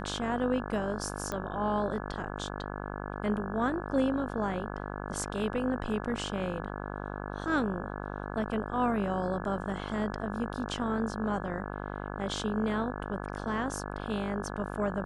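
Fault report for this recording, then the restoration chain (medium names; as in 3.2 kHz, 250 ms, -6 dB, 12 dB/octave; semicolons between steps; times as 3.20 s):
buzz 50 Hz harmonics 34 -38 dBFS
1.32 s: pop -20 dBFS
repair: de-click; de-hum 50 Hz, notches 34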